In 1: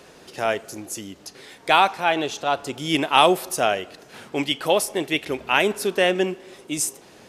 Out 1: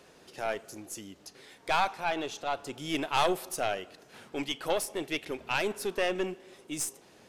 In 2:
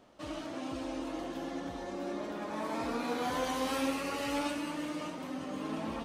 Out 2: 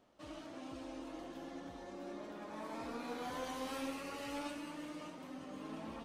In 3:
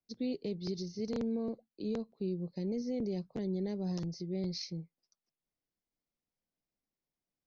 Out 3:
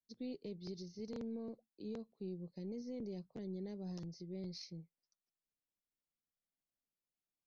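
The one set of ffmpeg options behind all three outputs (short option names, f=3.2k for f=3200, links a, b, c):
-af "aeval=exprs='(tanh(3.55*val(0)+0.55)-tanh(0.55))/3.55':c=same,volume=-6.5dB"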